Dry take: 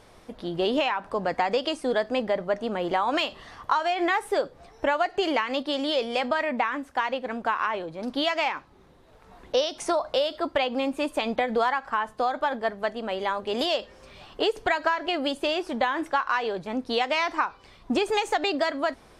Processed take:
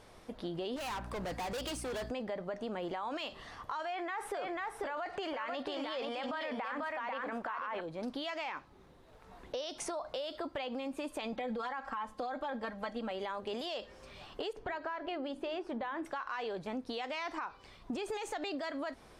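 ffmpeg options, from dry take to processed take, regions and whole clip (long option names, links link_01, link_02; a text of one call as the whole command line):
ffmpeg -i in.wav -filter_complex "[0:a]asettb=1/sr,asplit=3[link_01][link_02][link_03];[link_01]atrim=end=0.764[link_04];[link_02]atrim=start=0.76:end=2.11,asetpts=PTS-STARTPTS,afade=type=in:duration=0.004:curve=qsin,afade=type=out:start_time=1.346:duration=0.004:curve=qsin,highshelf=frequency=4800:gain=9.5,aeval=exprs='val(0)+0.01*(sin(2*PI*60*n/s)+sin(2*PI*2*60*n/s)/2+sin(2*PI*3*60*n/s)/3+sin(2*PI*4*60*n/s)/4+sin(2*PI*5*60*n/s)/5)':channel_layout=same,volume=31.5dB,asoftclip=hard,volume=-31.5dB[link_05];[link_03]atrim=start=2.106[link_06];[link_04][link_05]acrossfade=duration=0.004:curve1=hsin:curve2=qsin[link_07];[link_07][link_06]acrossfade=duration=0.004:curve1=qsin:curve2=hsin,asettb=1/sr,asplit=3[link_08][link_09][link_10];[link_08]atrim=end=3.854[link_11];[link_09]atrim=start=3.85:end=7.81,asetpts=PTS-STARTPTS,afade=type=in:duration=0.004:curve=qsin,afade=type=out:start_time=3.956:duration=0.004:curve=qsin,equalizer=frequency=1200:width=0.56:gain=9.5,aecho=1:1:492:0.501,atrim=end_sample=174636[link_12];[link_10]atrim=start=7.806[link_13];[link_11][link_12]acrossfade=duration=0.004:curve1=hsin:curve2=qsin[link_14];[link_14][link_13]acrossfade=duration=0.004:curve1=qsin:curve2=hsin,asettb=1/sr,asplit=3[link_15][link_16][link_17];[link_15]atrim=end=11.324[link_18];[link_16]atrim=start=11.32:end=13.11,asetpts=PTS-STARTPTS,afade=type=in:duration=0.004:curve=qsin,afade=type=out:start_time=1.786:duration=0.004:curve=qsin,highshelf=frequency=9100:gain=-4.5,aecho=1:1:3.7:0.78,atrim=end_sample=78939[link_19];[link_17]atrim=start=13.106[link_20];[link_18][link_19]acrossfade=duration=0.004:curve1=hsin:curve2=qsin[link_21];[link_21][link_20]acrossfade=duration=0.004:curve1=qsin:curve2=hsin,asettb=1/sr,asplit=3[link_22][link_23][link_24];[link_22]atrim=end=14.534[link_25];[link_23]atrim=start=14.53:end=16.05,asetpts=PTS-STARTPTS,afade=type=in:duration=0.004:curve=qsin,afade=type=out:start_time=1.516:duration=0.004:curve=qsin,lowpass=frequency=1600:poles=1,bandreject=frequency=50:width_type=h:width=6,bandreject=frequency=100:width_type=h:width=6,bandreject=frequency=150:width_type=h:width=6,bandreject=frequency=200:width_type=h:width=6,bandreject=frequency=250:width_type=h:width=6,bandreject=frequency=300:width_type=h:width=6,bandreject=frequency=350:width_type=h:width=6,bandreject=frequency=400:width_type=h:width=6,bandreject=frequency=450:width_type=h:width=6[link_26];[link_24]atrim=start=16.046[link_27];[link_25][link_26]acrossfade=duration=0.004:curve1=hsin:curve2=qsin[link_28];[link_28][link_27]acrossfade=duration=0.004:curve1=qsin:curve2=hsin,alimiter=limit=-21.5dB:level=0:latency=1:release=13,acompressor=threshold=-31dB:ratio=6,volume=-4dB" out.wav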